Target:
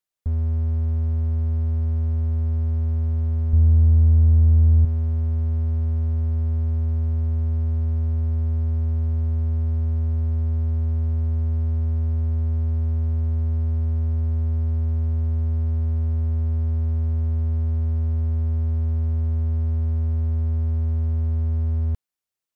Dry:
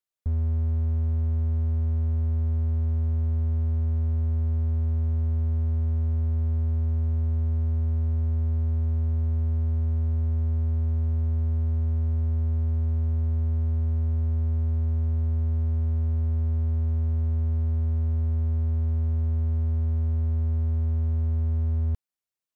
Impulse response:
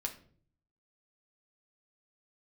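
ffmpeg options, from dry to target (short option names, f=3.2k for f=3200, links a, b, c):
-filter_complex "[0:a]asettb=1/sr,asplit=3[a][b][c];[a]atrim=end=3.534[d];[b]atrim=start=3.53:end=4.85,asetpts=PTS-STARTPTS,afade=t=in:d=0.004:c=qsin,afade=t=out:st=1.316:d=0.004:c=qsin,lowshelf=f=190:g=9[e];[c]atrim=start=4.846[f];[d][e]acrossfade=d=0.004:c1=hsin:c2=qsin[g];[g][f]acrossfade=d=0.004:c1=qsin:c2=hsin,volume=2.5dB"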